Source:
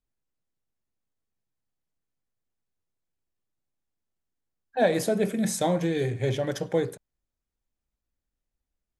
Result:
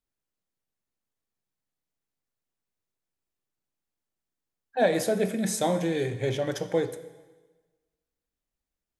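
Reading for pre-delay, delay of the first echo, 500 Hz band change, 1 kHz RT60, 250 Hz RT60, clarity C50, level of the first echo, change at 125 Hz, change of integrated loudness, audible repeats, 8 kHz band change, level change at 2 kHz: 6 ms, no echo, 0.0 dB, 1.3 s, 1.3 s, 13.5 dB, no echo, -3.0 dB, -0.5 dB, no echo, +0.5 dB, 0.0 dB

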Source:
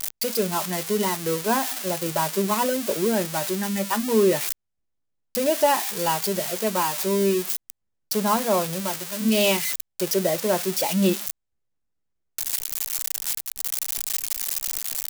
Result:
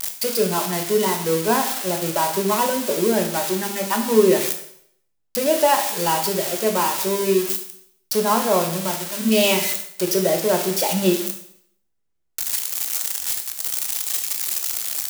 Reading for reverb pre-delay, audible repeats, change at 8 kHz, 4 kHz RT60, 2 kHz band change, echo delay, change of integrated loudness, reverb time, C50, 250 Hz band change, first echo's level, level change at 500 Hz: 15 ms, no echo, +3.5 dB, 0.65 s, +3.0 dB, no echo, +3.5 dB, 0.65 s, 8.5 dB, +2.0 dB, no echo, +4.0 dB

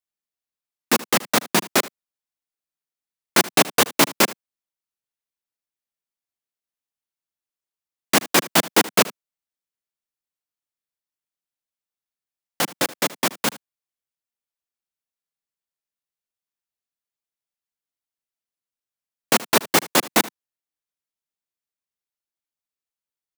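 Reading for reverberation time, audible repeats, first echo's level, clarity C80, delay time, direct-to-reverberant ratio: no reverb, 1, -19.0 dB, no reverb, 77 ms, no reverb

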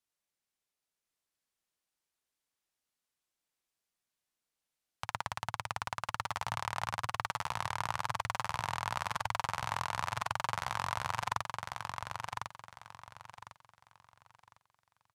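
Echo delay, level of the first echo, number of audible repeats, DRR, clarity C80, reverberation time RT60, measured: 1053 ms, -4.0 dB, 3, no reverb, no reverb, no reverb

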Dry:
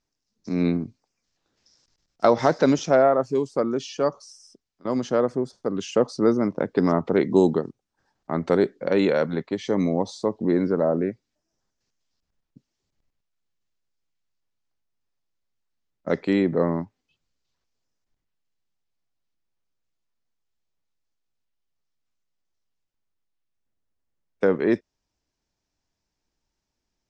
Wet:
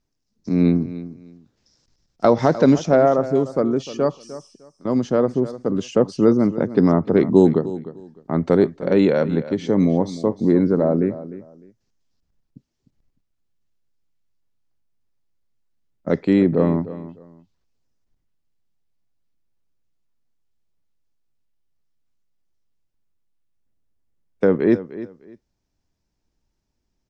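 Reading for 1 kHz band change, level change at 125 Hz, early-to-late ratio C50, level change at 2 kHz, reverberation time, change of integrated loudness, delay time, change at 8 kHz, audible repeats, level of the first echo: +1.0 dB, +7.5 dB, no reverb, -0.5 dB, no reverb, +4.0 dB, 303 ms, no reading, 2, -15.0 dB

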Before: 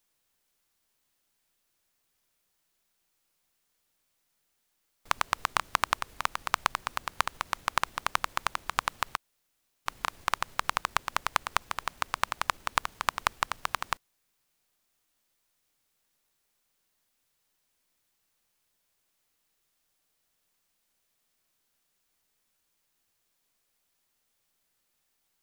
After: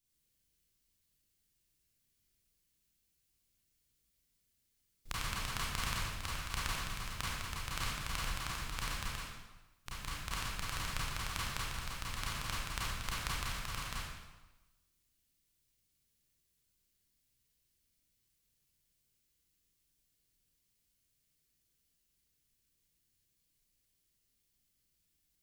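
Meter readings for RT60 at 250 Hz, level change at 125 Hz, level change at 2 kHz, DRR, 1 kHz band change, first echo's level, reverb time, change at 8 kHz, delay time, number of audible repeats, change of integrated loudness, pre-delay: 1.1 s, +7.0 dB, -8.0 dB, -7.5 dB, -13.0 dB, no echo, 1.1 s, -2.5 dB, no echo, no echo, -7.5 dB, 27 ms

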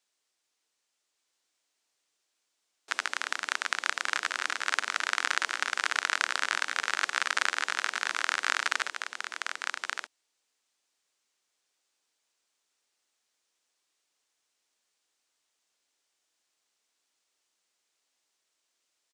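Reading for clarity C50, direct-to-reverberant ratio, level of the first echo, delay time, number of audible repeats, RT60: no reverb, no reverb, -5.0 dB, 1174 ms, 1, no reverb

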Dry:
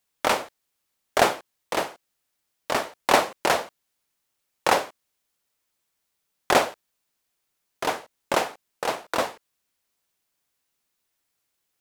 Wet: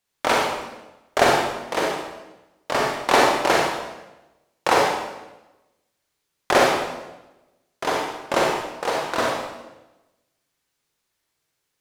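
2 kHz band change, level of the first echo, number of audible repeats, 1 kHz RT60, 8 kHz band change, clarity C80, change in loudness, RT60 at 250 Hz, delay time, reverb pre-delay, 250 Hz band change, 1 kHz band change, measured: +4.5 dB, no echo, no echo, 1.0 s, +2.0 dB, 3.0 dB, +3.5 dB, 1.2 s, no echo, 37 ms, +6.0 dB, +4.0 dB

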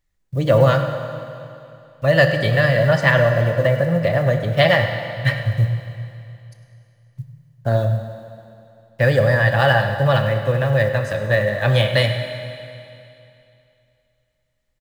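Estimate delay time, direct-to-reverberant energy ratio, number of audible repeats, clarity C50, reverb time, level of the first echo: 101 ms, 5.5 dB, 1, 6.5 dB, 2.7 s, -16.0 dB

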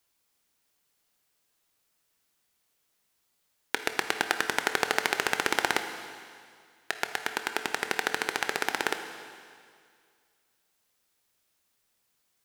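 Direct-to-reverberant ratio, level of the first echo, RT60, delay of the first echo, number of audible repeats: 7.0 dB, no echo, 2.1 s, no echo, no echo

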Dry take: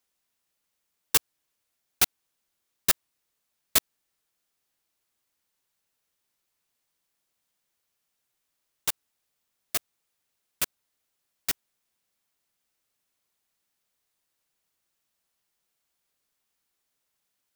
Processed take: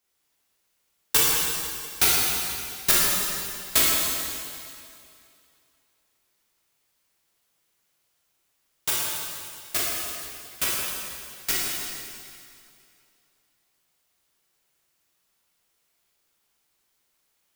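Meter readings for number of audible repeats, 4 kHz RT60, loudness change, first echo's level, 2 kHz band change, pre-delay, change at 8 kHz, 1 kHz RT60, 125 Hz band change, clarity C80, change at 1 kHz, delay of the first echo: no echo, 2.3 s, +4.0 dB, no echo, +7.5 dB, 7 ms, +7.0 dB, 2.5 s, +7.5 dB, -1.0 dB, +8.0 dB, no echo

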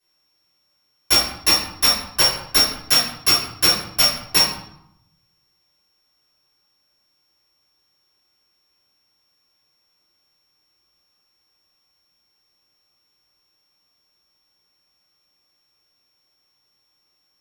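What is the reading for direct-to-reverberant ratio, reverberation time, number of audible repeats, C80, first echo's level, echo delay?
-11.0 dB, 0.80 s, no echo, 6.0 dB, no echo, no echo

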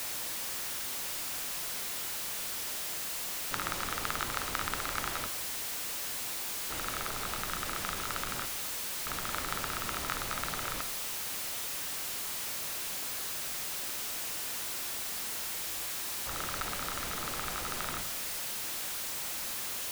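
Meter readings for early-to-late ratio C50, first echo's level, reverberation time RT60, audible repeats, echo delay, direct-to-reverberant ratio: 13.0 dB, no echo, 0.95 s, no echo, no echo, 10.0 dB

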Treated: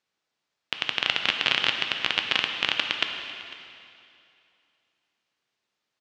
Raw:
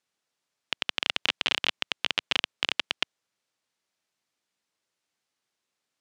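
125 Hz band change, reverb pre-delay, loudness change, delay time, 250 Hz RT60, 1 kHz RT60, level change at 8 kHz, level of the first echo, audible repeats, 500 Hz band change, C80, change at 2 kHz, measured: +3.0 dB, 4 ms, +3.5 dB, 500 ms, 2.6 s, 2.6 s, -1.5 dB, -19.5 dB, 1, +3.0 dB, 6.0 dB, +4.5 dB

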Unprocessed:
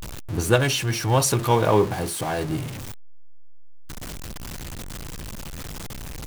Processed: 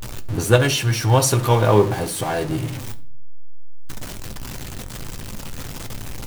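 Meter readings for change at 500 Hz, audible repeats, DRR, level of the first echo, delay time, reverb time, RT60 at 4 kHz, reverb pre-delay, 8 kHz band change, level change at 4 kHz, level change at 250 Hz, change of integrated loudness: +3.5 dB, no echo, 7.0 dB, no echo, no echo, 0.50 s, 0.35 s, 8 ms, +2.5 dB, +3.0 dB, +2.5 dB, +3.5 dB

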